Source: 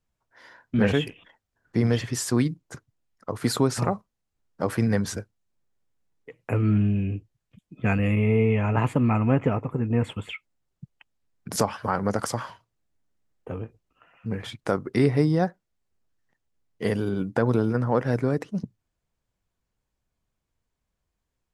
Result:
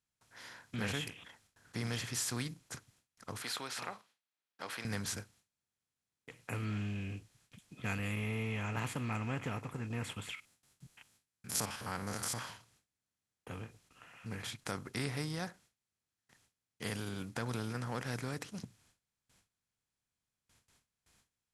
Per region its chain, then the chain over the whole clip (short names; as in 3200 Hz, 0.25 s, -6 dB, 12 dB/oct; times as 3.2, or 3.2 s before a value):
3.42–4.85 HPF 630 Hz + resonant high shelf 5000 Hz -10 dB, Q 1.5
10.35–12.39 stepped spectrum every 50 ms + high shelf 9000 Hz +11.5 dB
whole clip: per-bin compression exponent 0.6; passive tone stack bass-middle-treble 5-5-5; gate with hold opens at -56 dBFS; gain -2 dB